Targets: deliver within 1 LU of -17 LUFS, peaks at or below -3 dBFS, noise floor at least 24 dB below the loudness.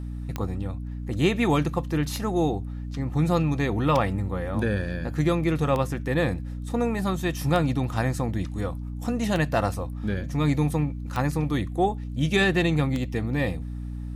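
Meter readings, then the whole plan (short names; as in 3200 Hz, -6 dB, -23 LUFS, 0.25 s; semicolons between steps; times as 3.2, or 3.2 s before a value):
clicks 8; hum 60 Hz; harmonics up to 300 Hz; hum level -31 dBFS; loudness -26.0 LUFS; peak -9.0 dBFS; loudness target -17.0 LUFS
-> de-click; de-hum 60 Hz, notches 5; gain +9 dB; limiter -3 dBFS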